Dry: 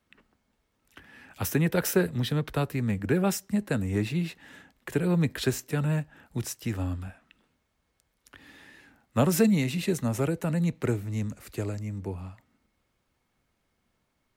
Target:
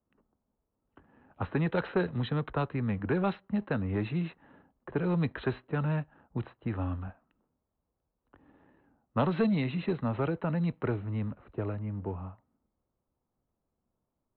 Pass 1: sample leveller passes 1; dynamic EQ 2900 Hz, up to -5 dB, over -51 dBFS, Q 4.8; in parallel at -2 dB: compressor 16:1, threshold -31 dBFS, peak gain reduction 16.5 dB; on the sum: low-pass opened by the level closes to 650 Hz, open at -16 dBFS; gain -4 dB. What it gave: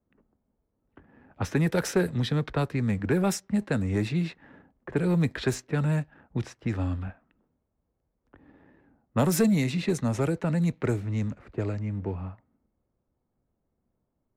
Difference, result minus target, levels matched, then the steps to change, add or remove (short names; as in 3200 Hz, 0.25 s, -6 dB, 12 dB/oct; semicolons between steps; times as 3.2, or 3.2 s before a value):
4000 Hz band +4.0 dB
add after dynamic EQ: rippled Chebyshev low-pass 4100 Hz, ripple 6 dB